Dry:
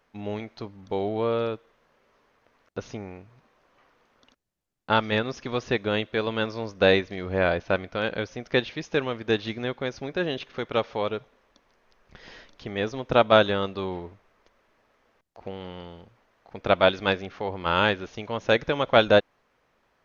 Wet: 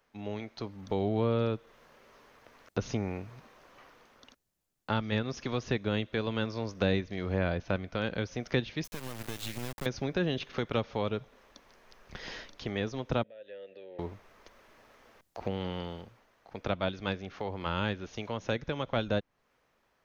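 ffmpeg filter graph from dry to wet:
-filter_complex "[0:a]asettb=1/sr,asplit=3[a][b][c];[a]atrim=end=8.844[d];[b]atrim=start=8.84:end=9.86,asetpts=PTS-STARTPTS,afade=t=in:d=0.004:c=qsin,afade=t=out:st=1.016:d=0.004:c=qsin,equalizer=f=390:t=o:w=0.86:g=-6.5,acompressor=threshold=-34dB:ratio=16:attack=3.2:release=140:knee=1:detection=peak,acrusher=bits=5:dc=4:mix=0:aa=0.000001[e];[c]atrim=start=9.856[f];[d][e]acrossfade=d=0.004:c1=hsin:c2=qsin[g];[g][f]acrossfade=d=0.004:c1=qsin:c2=hsin,asettb=1/sr,asplit=3[h][i][j];[h]atrim=end=13.234[k];[i]atrim=start=13.23:end=13.99,asetpts=PTS-STARTPTS,afade=t=in:d=0.004:c=qsin,afade=t=out:st=0.756:d=0.004:c=qsin,acompressor=threshold=-33dB:ratio=4:attack=3.2:release=140:knee=1:detection=peak,asplit=3[l][m][n];[l]bandpass=f=530:t=q:w=8,volume=0dB[o];[m]bandpass=f=1.84k:t=q:w=8,volume=-6dB[p];[n]bandpass=f=2.48k:t=q:w=8,volume=-9dB[q];[o][p][q]amix=inputs=3:normalize=0[r];[j]atrim=start=13.986[s];[k][r]acrossfade=d=0.004:c1=hsin:c2=qsin[t];[t][s]acrossfade=d=0.004:c1=qsin:c2=hsin,dynaudnorm=f=130:g=13:m=11.5dB,highshelf=f=5.9k:g=7,acrossover=split=240[u][v];[v]acompressor=threshold=-30dB:ratio=2.5[w];[u][w]amix=inputs=2:normalize=0,volume=-5dB"

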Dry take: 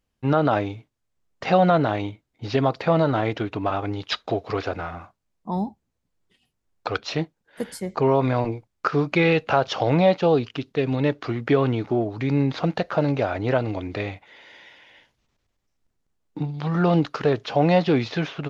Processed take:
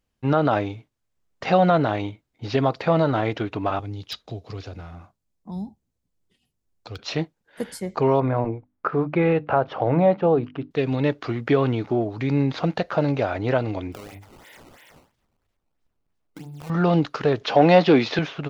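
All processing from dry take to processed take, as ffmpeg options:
-filter_complex "[0:a]asettb=1/sr,asplit=3[a][b][c];[a]atrim=end=3.794[d];[b]atrim=start=3.79:end=6.99,asetpts=PTS-STARTPTS,afade=t=in:d=0.004:c=qsin,afade=t=out:st=3.196:d=0.004:c=qsin,acrossover=split=190|3000[e][f][g];[f]acompressor=threshold=-42dB:ratio=2:attack=3.2:release=140:knee=2.83:detection=peak[h];[e][h][g]amix=inputs=3:normalize=0,asoftclip=type=hard:threshold=-19dB,equalizer=f=1.5k:t=o:w=3:g=-7[i];[c]atrim=start=6.986[j];[d][i]acrossfade=d=0.004:c1=hsin:c2=qsin[k];[k][j]acrossfade=d=0.004:c1=qsin:c2=hsin,asettb=1/sr,asplit=3[l][m][n];[l]atrim=end=8.204[o];[m]atrim=start=8.2:end=10.71,asetpts=PTS-STARTPTS,afade=t=in:d=0.004:c=qsin,afade=t=out:st=2.506:d=0.004:c=qsin,lowpass=1.5k,bandreject=f=50:t=h:w=6,bandreject=f=100:t=h:w=6,bandreject=f=150:t=h:w=6,bandreject=f=200:t=h:w=6,bandreject=f=250:t=h:w=6,bandreject=f=300:t=h:w=6[p];[n]atrim=start=10.706[q];[o][p]acrossfade=d=0.004:c1=hsin:c2=qsin[r];[r][q]acrossfade=d=0.004:c1=qsin:c2=hsin,asettb=1/sr,asplit=3[s][t][u];[s]atrim=end=13.924[v];[t]atrim=start=13.92:end=16.7,asetpts=PTS-STARTPTS,afade=t=in:d=0.004:c=qsin,afade=t=out:st=2.776:d=0.004:c=qsin,bandreject=f=50:t=h:w=6,bandreject=f=100:t=h:w=6,bandreject=f=150:t=h:w=6,bandreject=f=200:t=h:w=6,bandreject=f=250:t=h:w=6,bandreject=f=300:t=h:w=6,bandreject=f=350:t=h:w=6,bandreject=f=400:t=h:w=6,acompressor=threshold=-36dB:ratio=5:attack=3.2:release=140:knee=1:detection=peak,acrusher=samples=15:mix=1:aa=0.000001:lfo=1:lforange=24:lforate=3[w];[u]atrim=start=16.696[x];[v][w]acrossfade=d=0.004:c1=hsin:c2=qsin[y];[y][x]acrossfade=d=0.004:c1=qsin:c2=hsin,asettb=1/sr,asplit=3[z][aa][ab];[z]atrim=end=17.414[ac];[aa]atrim=start=17.41:end=18.19,asetpts=PTS-STARTPTS,afade=t=in:d=0.004:c=qsin,afade=t=out:st=0.776:d=0.004:c=qsin,acontrast=44,highpass=200,lowpass=6.5k[ad];[ab]atrim=start=18.186[ae];[ac][ad]acrossfade=d=0.004:c1=hsin:c2=qsin[af];[af][ae]acrossfade=d=0.004:c1=qsin:c2=hsin"

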